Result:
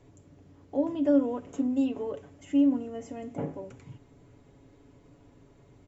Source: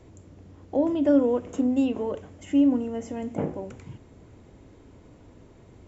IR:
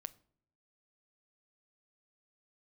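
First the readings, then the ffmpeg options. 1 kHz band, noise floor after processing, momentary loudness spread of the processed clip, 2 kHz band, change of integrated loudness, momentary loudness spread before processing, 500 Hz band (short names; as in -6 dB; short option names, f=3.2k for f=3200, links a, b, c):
-5.0 dB, -58 dBFS, 15 LU, n/a, -4.0 dB, 16 LU, -5.0 dB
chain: -af "aecho=1:1:7.1:0.55,volume=-6.5dB"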